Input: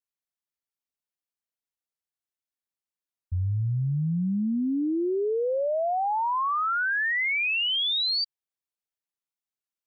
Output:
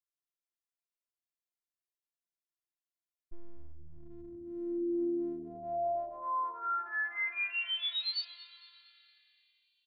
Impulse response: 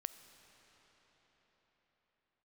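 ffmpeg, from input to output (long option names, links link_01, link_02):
-filter_complex "[0:a]asplit=2[link_01][link_02];[1:a]atrim=start_sample=2205[link_03];[link_02][link_03]afir=irnorm=-1:irlink=0,volume=-2.5dB[link_04];[link_01][link_04]amix=inputs=2:normalize=0,afftfilt=real='hypot(re,im)*cos(PI*b)':imag='0':win_size=512:overlap=0.75,asplit=5[link_05][link_06][link_07][link_08][link_09];[link_06]adelay=227,afreqshift=-78,volume=-18.5dB[link_10];[link_07]adelay=454,afreqshift=-156,volume=-24.5dB[link_11];[link_08]adelay=681,afreqshift=-234,volume=-30.5dB[link_12];[link_09]adelay=908,afreqshift=-312,volume=-36.6dB[link_13];[link_05][link_10][link_11][link_12][link_13]amix=inputs=5:normalize=0,volume=-9dB"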